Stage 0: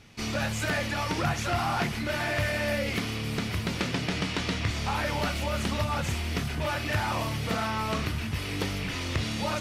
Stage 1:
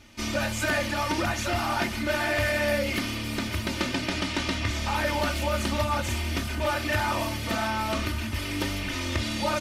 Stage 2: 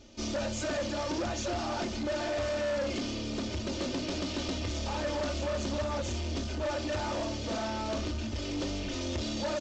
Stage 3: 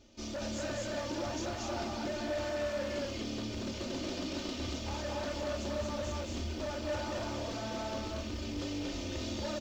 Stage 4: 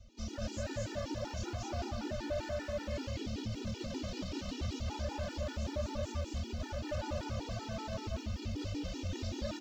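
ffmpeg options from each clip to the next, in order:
-af "highshelf=f=11000:g=4,aecho=1:1:3.3:0.75"
-af "equalizer=f=125:t=o:w=1:g=-6,equalizer=f=500:t=o:w=1:g=7,equalizer=f=1000:t=o:w=1:g=-6,equalizer=f=2000:t=o:w=1:g=-11,aresample=16000,asoftclip=type=tanh:threshold=0.0376,aresample=44100"
-af "acrusher=bits=9:mode=log:mix=0:aa=0.000001,aecho=1:1:198.3|233.2:0.316|0.891,volume=0.473"
-filter_complex "[0:a]acrossover=split=150|1700[s0][s1][s2];[s0]aeval=exprs='0.0251*sin(PI/2*2.24*val(0)/0.0251)':c=same[s3];[s3][s1][s2]amix=inputs=3:normalize=0,afftfilt=real='re*gt(sin(2*PI*5.2*pts/sr)*(1-2*mod(floor(b*sr/1024/250),2)),0)':imag='im*gt(sin(2*PI*5.2*pts/sr)*(1-2*mod(floor(b*sr/1024/250),2)),0)':win_size=1024:overlap=0.75,volume=0.891"

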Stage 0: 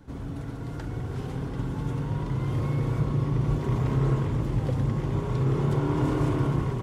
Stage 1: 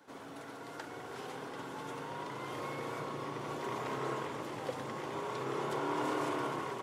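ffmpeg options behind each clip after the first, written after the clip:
-af "highpass=540"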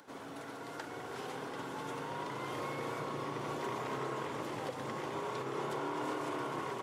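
-af "acompressor=mode=upward:threshold=0.00126:ratio=2.5,alimiter=level_in=2:limit=0.0631:level=0:latency=1:release=192,volume=0.501,volume=1.19"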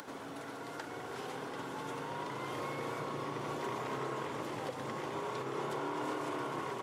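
-af "acompressor=mode=upward:threshold=0.01:ratio=2.5"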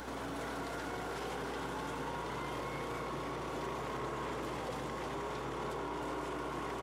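-af "alimiter=level_in=5.31:limit=0.0631:level=0:latency=1:release=14,volume=0.188,aeval=exprs='val(0)+0.00141*(sin(2*PI*60*n/s)+sin(2*PI*2*60*n/s)/2+sin(2*PI*3*60*n/s)/3+sin(2*PI*4*60*n/s)/4+sin(2*PI*5*60*n/s)/5)':c=same,aecho=1:1:312:0.473,volume=1.88"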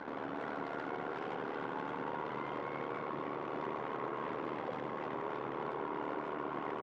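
-af "tremolo=f=75:d=0.71,anlmdn=0.00631,highpass=180,lowpass=2300,volume=1.58"

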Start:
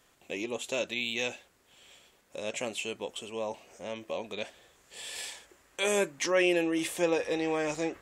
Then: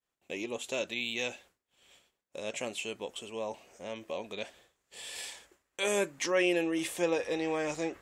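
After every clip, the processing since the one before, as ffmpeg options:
-af "agate=range=0.0224:threshold=0.00251:ratio=3:detection=peak,volume=0.794"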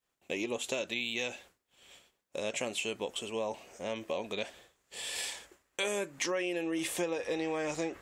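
-af "acompressor=threshold=0.02:ratio=12,volume=1.68"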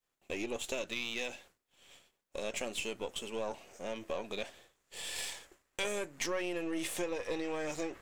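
-af "aeval=exprs='if(lt(val(0),0),0.447*val(0),val(0))':c=same"

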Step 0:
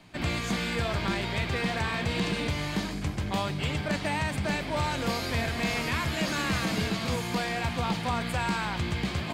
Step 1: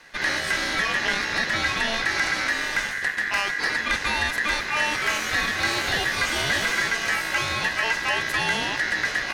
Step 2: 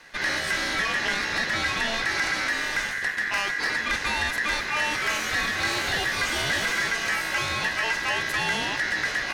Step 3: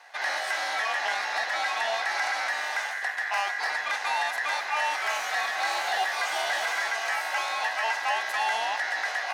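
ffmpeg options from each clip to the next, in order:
-af "aeval=exprs='val(0)*sin(2*PI*1800*n/s)':c=same,volume=2.37"
-af "asoftclip=type=tanh:threshold=0.141"
-af "highpass=f=750:t=q:w=4.8,volume=0.562"

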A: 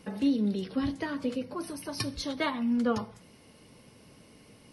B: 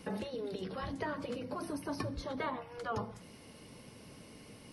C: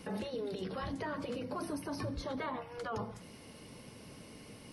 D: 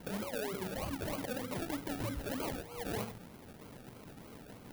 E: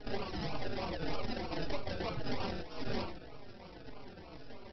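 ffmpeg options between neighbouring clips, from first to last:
-filter_complex "[0:a]acrossover=split=630|1600[s0][s1][s2];[s0]acompressor=threshold=0.0398:ratio=4[s3];[s1]acompressor=threshold=0.0112:ratio=4[s4];[s2]acompressor=threshold=0.00178:ratio=4[s5];[s3][s4][s5]amix=inputs=3:normalize=0,afftfilt=real='re*lt(hypot(re,im),0.158)':imag='im*lt(hypot(re,im),0.158)':win_size=1024:overlap=0.75,volume=1.26"
-af "alimiter=level_in=2.37:limit=0.0631:level=0:latency=1:release=19,volume=0.422,volume=1.19"
-af "acrusher=samples=34:mix=1:aa=0.000001:lfo=1:lforange=20.4:lforate=3.2,aexciter=amount=2.2:drive=3:freq=10000"
-filter_complex "[0:a]aresample=11025,aeval=exprs='abs(val(0))':c=same,aresample=44100,asplit=2[s0][s1];[s1]adelay=4.3,afreqshift=-1.8[s2];[s0][s2]amix=inputs=2:normalize=1,volume=2.51"

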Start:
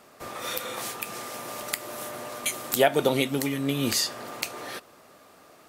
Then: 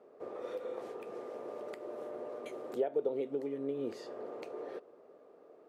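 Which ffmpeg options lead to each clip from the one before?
-af "bandpass=f=440:t=q:w=3.6:csg=0,acompressor=threshold=0.00891:ratio=2,volume=1.58"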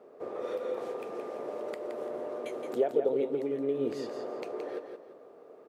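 -af "aecho=1:1:170|340|510|680:0.447|0.13|0.0376|0.0109,volume=1.78"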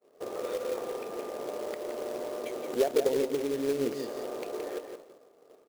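-af "acrusher=bits=3:mode=log:mix=0:aa=0.000001,agate=range=0.0224:threshold=0.00562:ratio=3:detection=peak,volume=1.12"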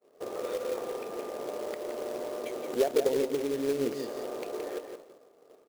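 -af anull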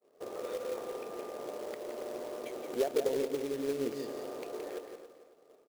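-af "aecho=1:1:276|552|828:0.211|0.0592|0.0166,volume=0.596"

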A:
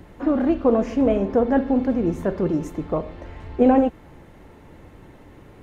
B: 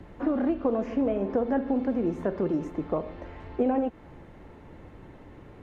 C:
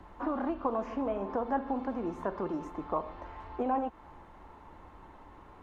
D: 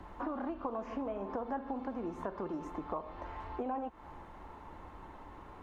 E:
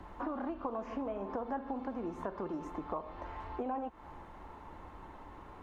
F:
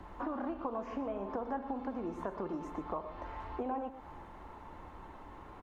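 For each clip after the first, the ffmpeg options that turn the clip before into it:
-filter_complex "[0:a]aemphasis=mode=reproduction:type=50kf,acrossover=split=190|2900[s0][s1][s2];[s0]acompressor=threshold=0.00891:ratio=4[s3];[s1]acompressor=threshold=0.0794:ratio=4[s4];[s2]acompressor=threshold=0.001:ratio=4[s5];[s3][s4][s5]amix=inputs=3:normalize=0,volume=0.841"
-af "equalizer=f=125:t=o:w=1:g=-10,equalizer=f=250:t=o:w=1:g=-3,equalizer=f=500:t=o:w=1:g=-6,equalizer=f=1000:t=o:w=1:g=11,equalizer=f=2000:t=o:w=1:g=-4,volume=0.708"
-af "acompressor=threshold=0.01:ratio=2.5,volume=1.26"
-af anull
-af "aecho=1:1:119:0.251"

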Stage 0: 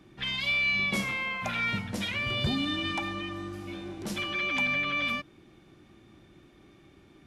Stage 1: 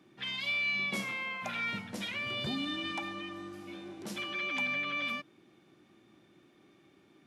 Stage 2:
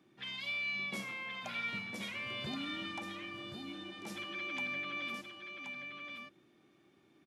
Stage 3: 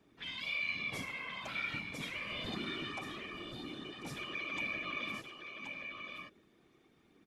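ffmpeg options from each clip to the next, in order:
-af "highpass=170,volume=0.562"
-af "aecho=1:1:1076:0.473,volume=0.531"
-af "afftfilt=real='hypot(re,im)*cos(2*PI*random(0))':imag='hypot(re,im)*sin(2*PI*random(1))':win_size=512:overlap=0.75,volume=2"

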